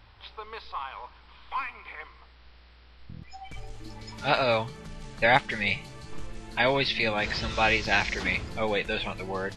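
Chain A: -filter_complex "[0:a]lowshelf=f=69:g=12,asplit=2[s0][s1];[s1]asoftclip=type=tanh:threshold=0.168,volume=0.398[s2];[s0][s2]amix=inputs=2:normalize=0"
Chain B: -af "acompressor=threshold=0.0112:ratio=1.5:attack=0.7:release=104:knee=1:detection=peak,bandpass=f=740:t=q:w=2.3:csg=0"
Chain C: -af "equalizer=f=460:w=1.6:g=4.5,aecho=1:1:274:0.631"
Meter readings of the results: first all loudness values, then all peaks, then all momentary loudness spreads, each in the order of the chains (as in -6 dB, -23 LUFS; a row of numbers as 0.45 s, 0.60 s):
-24.0 LUFS, -42.5 LUFS, -25.0 LUFS; -5.0 dBFS, -22.5 dBFS, -5.0 dBFS; 19 LU, 20 LU, 20 LU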